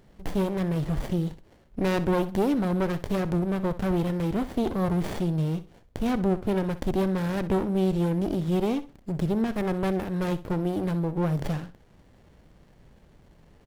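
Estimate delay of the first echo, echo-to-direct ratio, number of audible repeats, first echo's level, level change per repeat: 63 ms, -14.5 dB, 2, -15.0 dB, -12.5 dB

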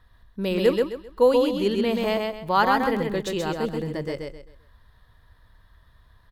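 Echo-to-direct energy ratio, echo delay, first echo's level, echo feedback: -3.0 dB, 131 ms, -3.5 dB, 29%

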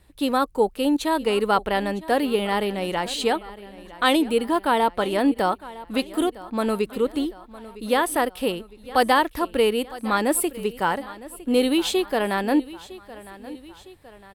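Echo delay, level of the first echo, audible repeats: 958 ms, -18.0 dB, 3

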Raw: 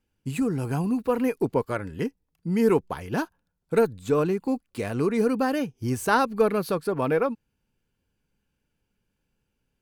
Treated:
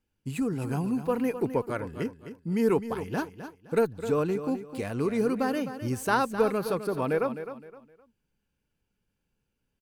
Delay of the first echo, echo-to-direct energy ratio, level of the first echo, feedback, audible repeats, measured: 258 ms, -10.5 dB, -11.0 dB, 29%, 3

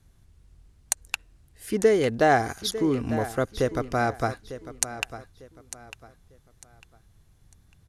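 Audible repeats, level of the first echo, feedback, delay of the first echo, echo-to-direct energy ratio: 3, -13.5 dB, 29%, 900 ms, -13.0 dB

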